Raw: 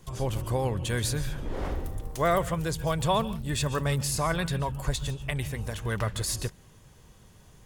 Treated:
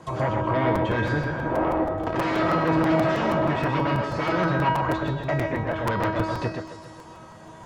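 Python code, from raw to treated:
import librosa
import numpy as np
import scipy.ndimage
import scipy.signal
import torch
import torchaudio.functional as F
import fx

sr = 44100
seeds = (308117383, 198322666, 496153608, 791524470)

y = fx.delta_mod(x, sr, bps=64000, step_db=-25.0, at=(2.06, 3.61))
y = fx.peak_eq(y, sr, hz=940.0, db=13.0, octaves=2.8)
y = fx.notch(y, sr, hz=420.0, q=13.0)
y = fx.echo_feedback(y, sr, ms=137, feedback_pct=58, wet_db=-16.5)
y = fx.fold_sine(y, sr, drive_db=19, ceiling_db=-1.5)
y = scipy.signal.sosfilt(scipy.signal.butter(2, 100.0, 'highpass', fs=sr, output='sos'), y)
y = fx.peak_eq(y, sr, hz=3400.0, db=-7.5, octaves=2.8)
y = fx.env_lowpass_down(y, sr, base_hz=2100.0, full_db=-7.0)
y = scipy.signal.sosfilt(scipy.signal.butter(2, 6900.0, 'lowpass', fs=sr, output='sos'), y)
y = fx.comb_fb(y, sr, f0_hz=320.0, decay_s=0.62, harmonics='all', damping=0.0, mix_pct=90)
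y = y + 10.0 ** (-5.5 / 20.0) * np.pad(y, (int(125 * sr / 1000.0), 0))[:len(y)]
y = fx.buffer_crackle(y, sr, first_s=0.75, period_s=0.16, block=256, kind='repeat')
y = y * 10.0 ** (1.0 / 20.0)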